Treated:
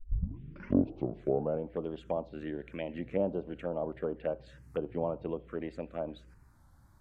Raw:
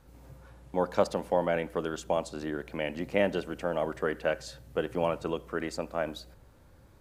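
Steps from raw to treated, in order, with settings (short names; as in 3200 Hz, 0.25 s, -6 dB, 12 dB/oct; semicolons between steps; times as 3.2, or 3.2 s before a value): tape start at the beginning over 1.65 s; treble ducked by the level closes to 1000 Hz, closed at -26 dBFS; envelope phaser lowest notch 440 Hz, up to 1900 Hz, full sweep at -26.5 dBFS; record warp 33 1/3 rpm, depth 100 cents; gain -2.5 dB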